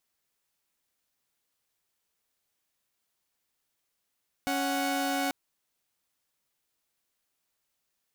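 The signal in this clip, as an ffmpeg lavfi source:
-f lavfi -i "aevalsrc='0.0422*((2*mod(277.18*t,1)-1)+(2*mod(739.99*t,1)-1))':d=0.84:s=44100"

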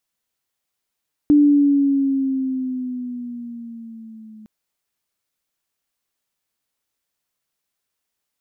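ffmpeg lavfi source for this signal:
-f lavfi -i "aevalsrc='pow(10,(-8.5-30*t/3.16)/20)*sin(2*PI*295*3.16/(-5.5*log(2)/12)*(exp(-5.5*log(2)/12*t/3.16)-1))':d=3.16:s=44100"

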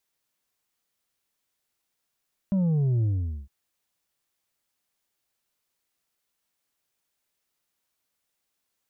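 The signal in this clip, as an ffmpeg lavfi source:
-f lavfi -i "aevalsrc='0.0891*clip((0.96-t)/0.45,0,1)*tanh(1.68*sin(2*PI*200*0.96/log(65/200)*(exp(log(65/200)*t/0.96)-1)))/tanh(1.68)':d=0.96:s=44100"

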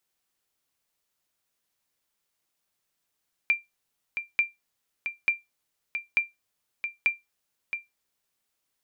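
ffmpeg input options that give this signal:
-f lavfi -i "aevalsrc='0.2*(sin(2*PI*2370*mod(t,0.89))*exp(-6.91*mod(t,0.89)/0.18)+0.376*sin(2*PI*2370*max(mod(t,0.89)-0.67,0))*exp(-6.91*max(mod(t,0.89)-0.67,0)/0.18))':d=4.45:s=44100"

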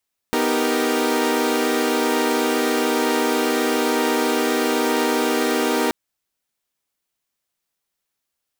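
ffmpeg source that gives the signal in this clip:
-f lavfi -i "aevalsrc='0.0891*((2*mod(246.94*t,1)-1)+(2*mod(311.13*t,1)-1)+(2*mod(392*t,1)-1)+(2*mod(466.16*t,1)-1))':d=5.58:s=44100"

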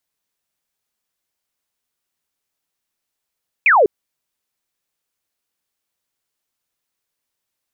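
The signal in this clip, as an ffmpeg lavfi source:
-f lavfi -i "aevalsrc='0.376*clip(t/0.002,0,1)*clip((0.2-t)/0.002,0,1)*sin(2*PI*2600*0.2/log(370/2600)*(exp(log(370/2600)*t/0.2)-1))':d=0.2:s=44100"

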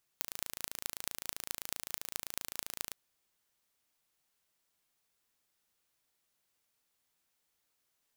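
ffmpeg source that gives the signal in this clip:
-f lavfi -i "aevalsrc='0.473*eq(mod(n,1592),0)*(0.5+0.5*eq(mod(n,9552),0))':d=2.71:s=44100"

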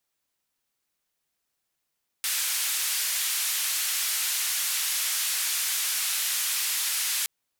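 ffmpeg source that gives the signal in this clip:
-f lavfi -i "anoisesrc=c=white:d=5.02:r=44100:seed=1,highpass=f=1700,lowpass=f=14000,volume=-20.1dB"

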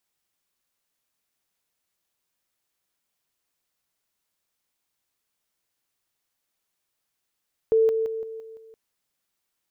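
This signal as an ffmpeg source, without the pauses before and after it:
-f lavfi -i "aevalsrc='pow(10,(-15.5-6*floor(t/0.17))/20)*sin(2*PI*446*t)':d=1.02:s=44100"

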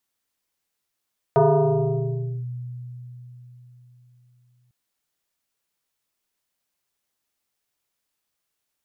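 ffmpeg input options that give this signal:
-f lavfi -i "aevalsrc='0.251*pow(10,-3*t/4.15)*sin(2*PI*123*t+2.9*clip(1-t/1.09,0,1)*sin(2*PI*2.22*123*t))':d=3.35:s=44100"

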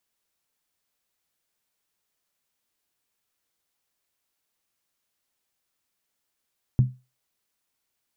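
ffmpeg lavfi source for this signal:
-f lavfi -i "aevalsrc='0.282*pow(10,-3*t/0.27)*sin(2*PI*127*t)+0.0708*pow(10,-3*t/0.214)*sin(2*PI*202.4*t)+0.0178*pow(10,-3*t/0.185)*sin(2*PI*271.3*t)+0.00447*pow(10,-3*t/0.178)*sin(2*PI*291.6*t)+0.00112*pow(10,-3*t/0.166)*sin(2*PI*336.9*t)':d=0.63:s=44100"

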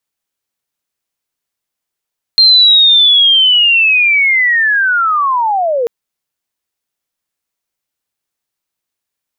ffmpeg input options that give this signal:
-f lavfi -i "aevalsrc='pow(10,(-3-8*t/3.49)/20)*sin(2*PI*(4200*t-3750*t*t/(2*3.49)))':d=3.49:s=44100"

